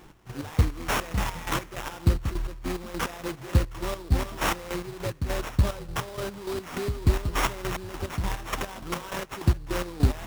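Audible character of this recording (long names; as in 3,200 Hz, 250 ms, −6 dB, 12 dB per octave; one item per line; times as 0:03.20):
a buzz of ramps at a fixed pitch in blocks of 8 samples
chopped level 3.4 Hz, depth 65%, duty 40%
aliases and images of a low sample rate 4,400 Hz, jitter 20%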